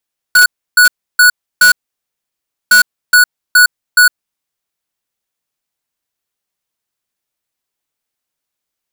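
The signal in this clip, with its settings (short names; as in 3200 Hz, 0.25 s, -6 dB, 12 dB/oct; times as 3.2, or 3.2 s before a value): beep pattern square 1470 Hz, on 0.11 s, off 0.31 s, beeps 4, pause 0.99 s, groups 2, -5.5 dBFS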